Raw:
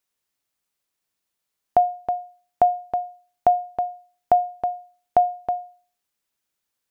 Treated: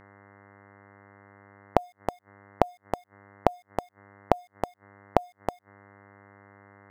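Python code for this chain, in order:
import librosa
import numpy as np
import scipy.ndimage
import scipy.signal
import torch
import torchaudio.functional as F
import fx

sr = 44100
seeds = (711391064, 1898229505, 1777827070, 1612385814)

y = fx.notch(x, sr, hz=1500.0, q=6.3)
y = np.where(np.abs(y) >= 10.0 ** (-30.0 / 20.0), y, 0.0)
y = fx.dmg_buzz(y, sr, base_hz=100.0, harmonics=21, level_db=-63.0, tilt_db=-2, odd_only=False)
y = fx.gate_flip(y, sr, shuts_db=-22.0, range_db=-33)
y = y * librosa.db_to_amplitude(9.0)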